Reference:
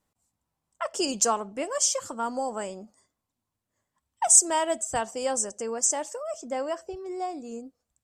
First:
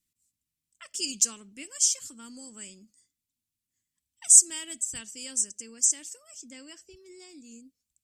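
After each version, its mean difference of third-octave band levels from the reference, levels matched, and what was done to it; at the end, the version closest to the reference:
7.5 dB: drawn EQ curve 290 Hz 0 dB, 760 Hz −25 dB, 2,300 Hz +6 dB, 11,000 Hz +12 dB
level −9 dB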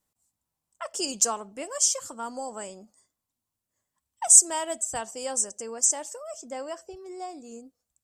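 3.0 dB: high-shelf EQ 4,800 Hz +10.5 dB
level −5.5 dB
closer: second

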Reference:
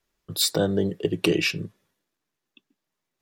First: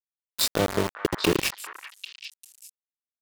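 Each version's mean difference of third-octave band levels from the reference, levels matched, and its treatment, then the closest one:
13.5 dB: centre clipping without the shift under −19.5 dBFS
on a send: echo through a band-pass that steps 397 ms, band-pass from 1,400 Hz, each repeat 1.4 octaves, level −6 dB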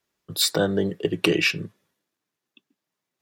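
1.5 dB: high-pass filter 92 Hz
dynamic equaliser 1,600 Hz, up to +6 dB, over −42 dBFS, Q 0.79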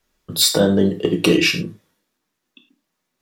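3.5 dB: in parallel at −4 dB: hard clipping −14 dBFS, distortion −20 dB
on the sum: reverb whose tail is shaped and stops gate 130 ms falling, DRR 4.5 dB
level +2 dB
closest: second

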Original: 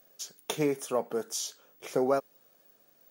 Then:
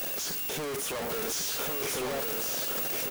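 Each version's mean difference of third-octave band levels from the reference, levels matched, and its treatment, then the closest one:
19.5 dB: sign of each sample alone
on a send: single-tap delay 1,101 ms −3.5 dB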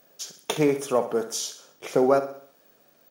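3.0 dB: high-shelf EQ 6,800 Hz −6 dB
repeating echo 65 ms, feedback 46%, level −11.5 dB
level +6.5 dB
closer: second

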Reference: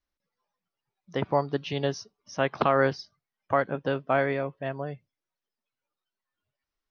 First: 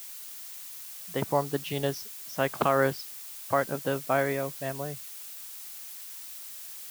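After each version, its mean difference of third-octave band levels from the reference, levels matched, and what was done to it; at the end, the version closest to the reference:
9.0 dB: background noise blue −41 dBFS
level −1.5 dB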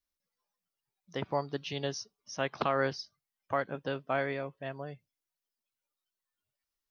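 1.5 dB: high-shelf EQ 3,900 Hz +12 dB
level −7.5 dB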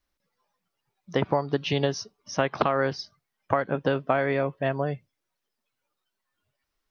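2.5 dB: downward compressor 12 to 1, threshold −26 dBFS, peak gain reduction 10 dB
level +7 dB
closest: second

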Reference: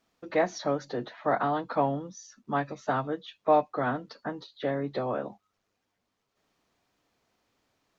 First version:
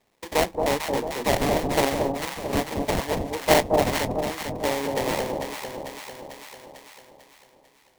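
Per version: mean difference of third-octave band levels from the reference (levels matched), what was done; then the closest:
16.0 dB: loudspeaker in its box 320–2,800 Hz, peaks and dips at 330 Hz −5 dB, 750 Hz −8 dB, 2,000 Hz −9 dB
sample-rate reduction 1,400 Hz, jitter 20%
on a send: delay that swaps between a low-pass and a high-pass 223 ms, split 900 Hz, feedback 69%, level −2.5 dB
on the sum: one half of a high-frequency compander encoder only
level +7 dB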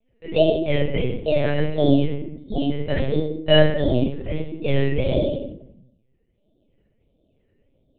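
10.0 dB: Butterworth low-pass 620 Hz 48 dB per octave
sample-and-hold swept by an LFO 15×, swing 60% 1.5 Hz
rectangular room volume 140 cubic metres, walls mixed, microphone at 5 metres
linear-prediction vocoder at 8 kHz pitch kept
level −2.5 dB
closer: second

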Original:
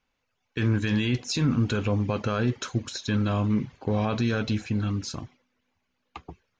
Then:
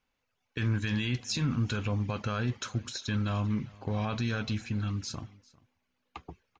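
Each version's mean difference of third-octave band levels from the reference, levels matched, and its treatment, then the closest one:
2.0 dB: dynamic equaliser 390 Hz, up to −7 dB, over −39 dBFS, Q 0.76
on a send: single-tap delay 398 ms −23.5 dB
on the sum: level −3 dB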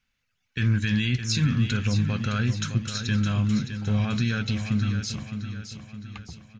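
5.5 dB: flat-topped bell 550 Hz −12 dB 2.3 octaves
on a send: repeating echo 613 ms, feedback 48%, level −9 dB
on the sum: level +2.5 dB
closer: first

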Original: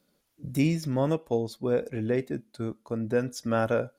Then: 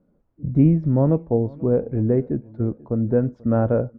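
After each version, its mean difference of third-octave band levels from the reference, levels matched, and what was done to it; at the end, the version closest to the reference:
7.5 dB: low-pass filter 1,100 Hz 12 dB per octave
spectral tilt −3 dB per octave
repeating echo 488 ms, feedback 39%, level −23 dB
level +2.5 dB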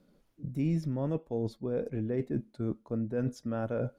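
4.5 dB: parametric band 71 Hz −11 dB 0.83 octaves
reversed playback
downward compressor 4 to 1, threshold −37 dBFS, peak gain reduction 14.5 dB
reversed playback
spectral tilt −3 dB per octave
level +1.5 dB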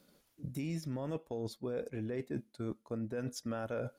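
3.0 dB: brickwall limiter −21 dBFS, peak gain reduction 7.5 dB
reversed playback
downward compressor 4 to 1, threshold −42 dBFS, peak gain reduction 14 dB
reversed playback
transient designer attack +2 dB, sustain −3 dB
level +4 dB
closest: third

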